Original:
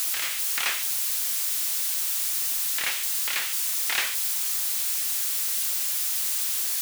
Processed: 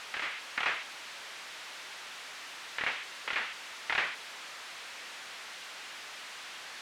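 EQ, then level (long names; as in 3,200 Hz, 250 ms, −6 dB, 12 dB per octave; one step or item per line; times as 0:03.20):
low-pass filter 2,200 Hz 12 dB per octave
0.0 dB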